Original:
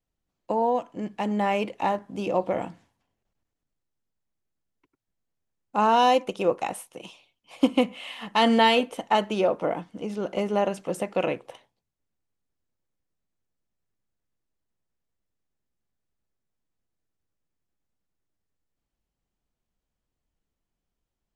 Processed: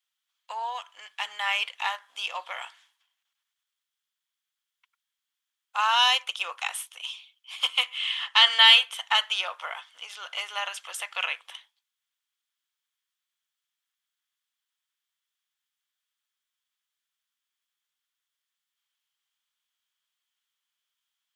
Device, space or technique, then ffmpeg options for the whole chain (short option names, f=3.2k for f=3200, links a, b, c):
headphones lying on a table: -filter_complex "[0:a]asettb=1/sr,asplit=3[a][b][c];[a]atrim=end=7.984[d];[b]atrim=start=7.98:end=8.59,asetpts=PTS-STARTPTS,afade=t=in:d=0.004:c=qsin,afade=t=out:st=0.606:d=0.004:c=qsin,lowpass=7.8k[e];[c]atrim=start=8.586[f];[d][e]acrossfade=d=0.004:c1=hsin:c2=qsin[g];[g][f]acrossfade=d=0.004:c1=qsin:c2=hsin,highpass=f=1.2k:w=0.5412,highpass=f=1.2k:w=1.3066,equalizer=f=3.3k:t=o:w=0.31:g=10.5,volume=5.5dB"